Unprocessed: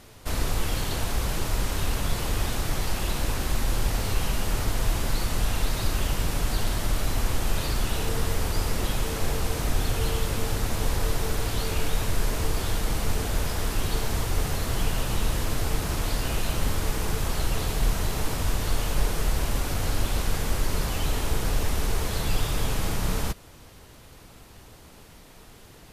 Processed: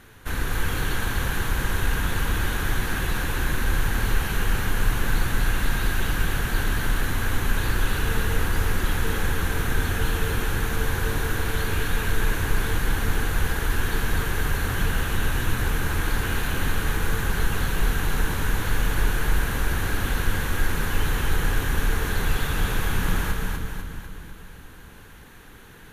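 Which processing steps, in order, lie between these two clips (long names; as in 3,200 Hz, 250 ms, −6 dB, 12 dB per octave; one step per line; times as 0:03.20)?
thirty-one-band graphic EQ 630 Hz −9 dB, 1,600 Hz +11 dB, 5,000 Hz −11 dB, 8,000 Hz −7 dB
echo with a time of its own for lows and highs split 330 Hz, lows 335 ms, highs 248 ms, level −3 dB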